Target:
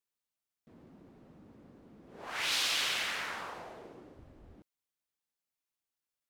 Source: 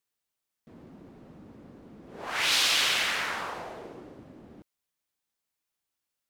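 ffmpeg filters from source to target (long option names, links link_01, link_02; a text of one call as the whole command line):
ffmpeg -i in.wav -filter_complex "[0:a]asplit=3[link_01][link_02][link_03];[link_01]afade=type=out:start_time=4.13:duration=0.02[link_04];[link_02]asubboost=boost=11:cutoff=61,afade=type=in:start_time=4.13:duration=0.02,afade=type=out:start_time=4.55:duration=0.02[link_05];[link_03]afade=type=in:start_time=4.55:duration=0.02[link_06];[link_04][link_05][link_06]amix=inputs=3:normalize=0,volume=-7dB" out.wav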